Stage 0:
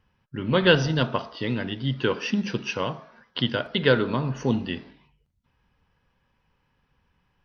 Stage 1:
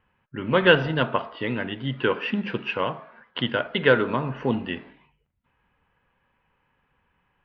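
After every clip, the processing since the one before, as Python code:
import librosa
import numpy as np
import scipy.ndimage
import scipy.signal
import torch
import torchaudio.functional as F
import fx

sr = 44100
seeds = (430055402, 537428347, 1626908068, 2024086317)

y = scipy.signal.sosfilt(scipy.signal.butter(4, 2800.0, 'lowpass', fs=sr, output='sos'), x)
y = fx.low_shelf(y, sr, hz=280.0, db=-9.0)
y = y * 10.0 ** (4.0 / 20.0)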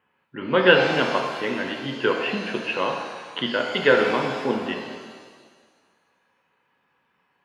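y = scipy.signal.sosfilt(scipy.signal.butter(2, 210.0, 'highpass', fs=sr, output='sos'), x)
y = fx.rev_shimmer(y, sr, seeds[0], rt60_s=1.6, semitones=7, shimmer_db=-8, drr_db=2.5)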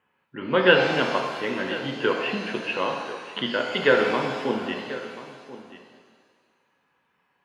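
y = x + 10.0 ** (-16.0 / 20.0) * np.pad(x, (int(1036 * sr / 1000.0), 0))[:len(x)]
y = y * 10.0 ** (-1.5 / 20.0)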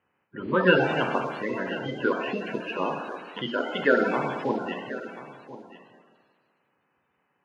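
y = fx.spec_quant(x, sr, step_db=30)
y = fx.high_shelf(y, sr, hz=2400.0, db=-11.0)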